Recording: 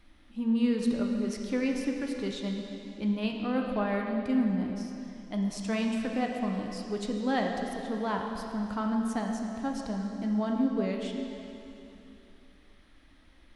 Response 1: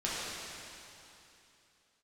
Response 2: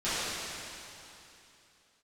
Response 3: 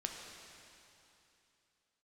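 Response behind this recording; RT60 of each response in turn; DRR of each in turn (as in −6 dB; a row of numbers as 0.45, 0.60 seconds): 3; 2.9, 2.9, 2.9 seconds; −9.0, −16.5, 1.0 decibels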